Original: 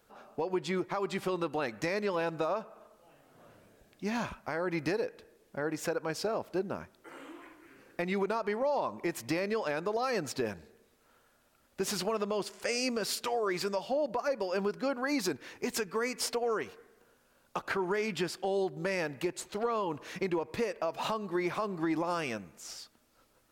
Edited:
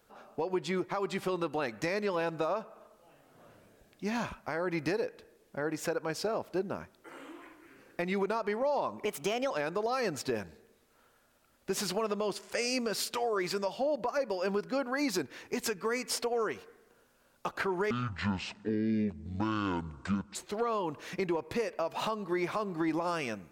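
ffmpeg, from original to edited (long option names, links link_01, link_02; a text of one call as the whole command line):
ffmpeg -i in.wav -filter_complex "[0:a]asplit=5[link_01][link_02][link_03][link_04][link_05];[link_01]atrim=end=9.054[link_06];[link_02]atrim=start=9.05:end=9.61,asetpts=PTS-STARTPTS,asetrate=54243,aresample=44100,atrim=end_sample=20078,asetpts=PTS-STARTPTS[link_07];[link_03]atrim=start=9.606:end=18.014[link_08];[link_04]atrim=start=18.01:end=19.38,asetpts=PTS-STARTPTS,asetrate=24696,aresample=44100,atrim=end_sample=107887,asetpts=PTS-STARTPTS[link_09];[link_05]atrim=start=19.376[link_10];[link_06][link_07]acrossfade=duration=0.004:curve1=hsin:curve2=hsin[link_11];[link_11][link_08]acrossfade=duration=0.004:curve1=hsin:curve2=hsin[link_12];[link_12][link_09]acrossfade=duration=0.004:curve1=hsin:curve2=hsin[link_13];[link_13][link_10]acrossfade=duration=0.004:curve1=hsin:curve2=hsin" out.wav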